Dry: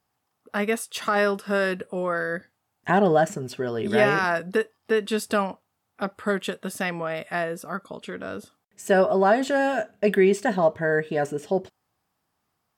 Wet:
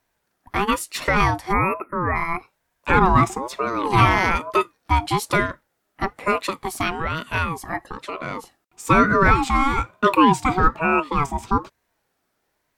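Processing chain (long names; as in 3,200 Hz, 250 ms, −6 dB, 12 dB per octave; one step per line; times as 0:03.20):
time-frequency box erased 0:01.53–0:02.15, 1,900–10,000 Hz
ring modulator whose carrier an LFO sweeps 670 Hz, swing 25%, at 1.1 Hz
level +6.5 dB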